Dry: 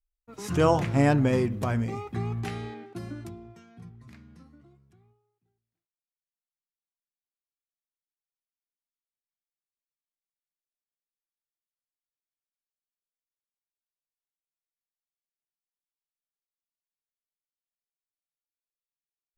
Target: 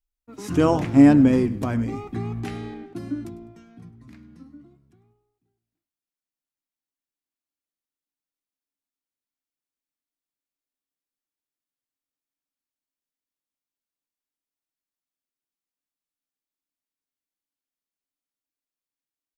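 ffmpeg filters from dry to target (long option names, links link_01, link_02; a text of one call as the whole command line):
ffmpeg -i in.wav -filter_complex "[0:a]equalizer=frequency=280:width_type=o:width=0.41:gain=13.5,asplit=2[link_01][link_02];[link_02]asplit=3[link_03][link_04][link_05];[link_03]adelay=101,afreqshift=-62,volume=-18dB[link_06];[link_04]adelay=202,afreqshift=-124,volume=-27.6dB[link_07];[link_05]adelay=303,afreqshift=-186,volume=-37.3dB[link_08];[link_06][link_07][link_08]amix=inputs=3:normalize=0[link_09];[link_01][link_09]amix=inputs=2:normalize=0" out.wav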